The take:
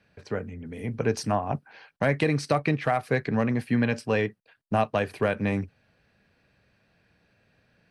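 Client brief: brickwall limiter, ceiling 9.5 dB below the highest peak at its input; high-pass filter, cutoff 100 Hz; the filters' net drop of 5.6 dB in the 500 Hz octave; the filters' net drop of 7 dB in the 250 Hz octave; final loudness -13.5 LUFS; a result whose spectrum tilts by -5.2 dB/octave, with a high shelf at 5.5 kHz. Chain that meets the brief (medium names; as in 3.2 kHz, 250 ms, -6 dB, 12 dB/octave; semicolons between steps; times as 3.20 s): high-pass 100 Hz; peaking EQ 250 Hz -7.5 dB; peaking EQ 500 Hz -5 dB; treble shelf 5.5 kHz -5 dB; trim +21.5 dB; peak limiter -0.5 dBFS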